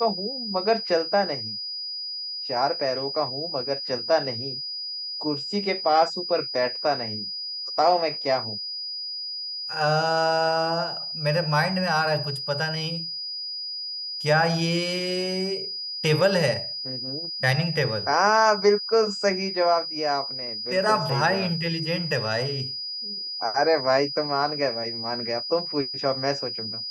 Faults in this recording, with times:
whistle 4,900 Hz −30 dBFS

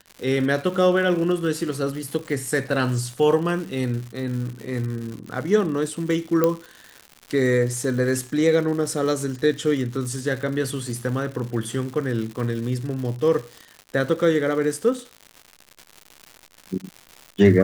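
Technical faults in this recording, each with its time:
surface crackle 220 per second −31 dBFS
0:06.44: click −7 dBFS

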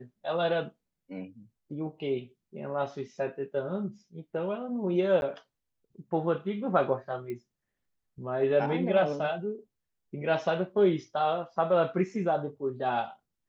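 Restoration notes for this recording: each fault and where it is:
0:05.21–0:05.22: drop-out 11 ms
0:07.30: click −27 dBFS

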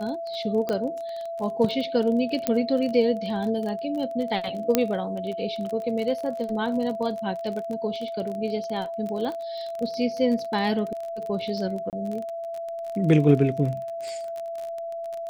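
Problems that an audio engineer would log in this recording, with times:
surface crackle 29 per second −30 dBFS
whistle 670 Hz −30 dBFS
0:00.69: click −15 dBFS
0:02.47: click −8 dBFS
0:04.75: click −4 dBFS
0:11.90–0:11.93: drop-out 28 ms

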